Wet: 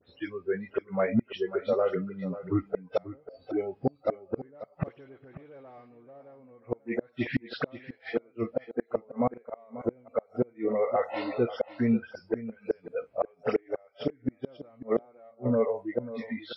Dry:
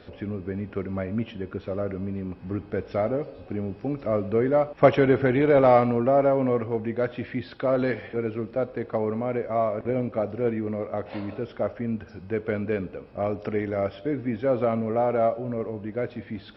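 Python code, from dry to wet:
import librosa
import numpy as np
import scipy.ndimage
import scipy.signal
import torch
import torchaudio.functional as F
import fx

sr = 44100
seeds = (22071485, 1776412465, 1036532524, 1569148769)

p1 = fx.spec_delay(x, sr, highs='late', ms=112)
p2 = fx.noise_reduce_blind(p1, sr, reduce_db=24)
p3 = 10.0 ** (-20.5 / 20.0) * np.tanh(p2 / 10.0 ** (-20.5 / 20.0))
p4 = p2 + (p3 * 10.0 ** (-8.0 / 20.0))
p5 = scipy.signal.sosfilt(scipy.signal.butter(2, 70.0, 'highpass', fs=sr, output='sos'), p4)
p6 = fx.gate_flip(p5, sr, shuts_db=-18.0, range_db=-36)
p7 = p6 + fx.echo_single(p6, sr, ms=539, db=-14.5, dry=0)
y = p7 * 10.0 ** (3.5 / 20.0)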